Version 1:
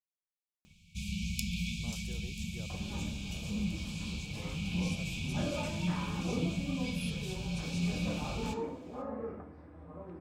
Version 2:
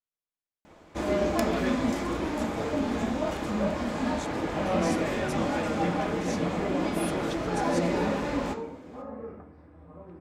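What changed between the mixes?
speech +10.0 dB; first sound: remove brick-wall FIR band-stop 210–2200 Hz

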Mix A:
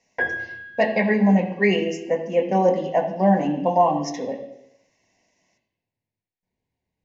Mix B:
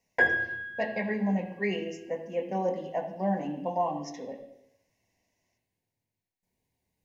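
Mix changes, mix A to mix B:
speech -11.0 dB; background: remove air absorption 120 m

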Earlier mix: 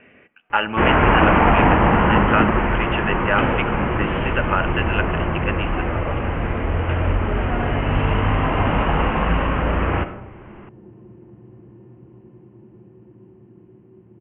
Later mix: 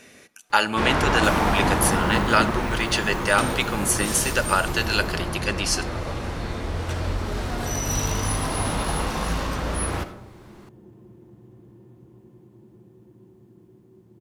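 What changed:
first sound -7.0 dB; second sound -4.5 dB; master: remove steep low-pass 3000 Hz 96 dB/oct

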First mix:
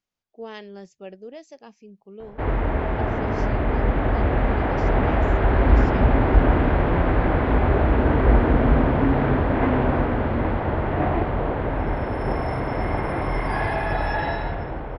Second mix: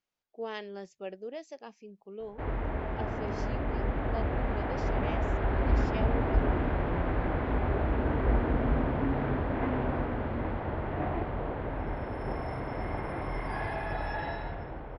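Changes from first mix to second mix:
speech: add tone controls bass -7 dB, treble -3 dB; background -10.0 dB

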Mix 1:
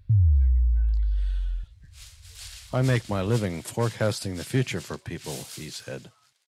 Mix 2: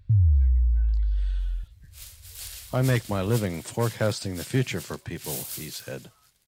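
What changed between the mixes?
speech: add brick-wall FIR low-pass 9300 Hz; second sound: remove BPF 700–7500 Hz

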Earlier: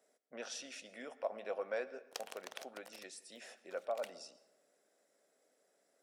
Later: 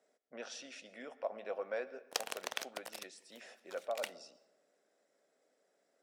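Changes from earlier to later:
speech: add air absorption 56 m; background +9.0 dB

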